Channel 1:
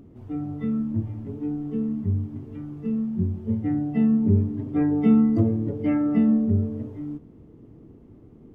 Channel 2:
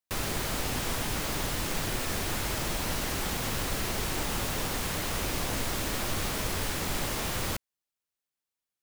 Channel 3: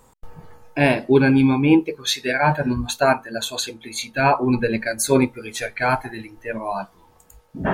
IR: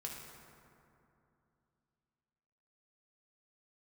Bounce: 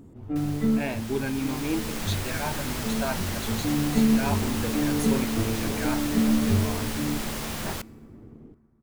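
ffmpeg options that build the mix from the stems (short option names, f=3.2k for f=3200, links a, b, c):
-filter_complex "[0:a]aeval=exprs='if(lt(val(0),0),0.708*val(0),val(0))':c=same,dynaudnorm=f=130:g=5:m=3.5dB,volume=0.5dB,asplit=2[a][b];[b]volume=-15.5dB[c];[1:a]dynaudnorm=f=230:g=11:m=11dB,adelay=250,volume=-12.5dB,asplit=2[d][e];[e]volume=-17dB[f];[2:a]volume=-14dB,asplit=2[g][h];[h]apad=whole_len=376670[i];[a][i]sidechaincompress=threshold=-39dB:ratio=8:attack=16:release=905[j];[3:a]atrim=start_sample=2205[k];[c][f]amix=inputs=2:normalize=0[l];[l][k]afir=irnorm=-1:irlink=0[m];[j][d][g][m]amix=inputs=4:normalize=0"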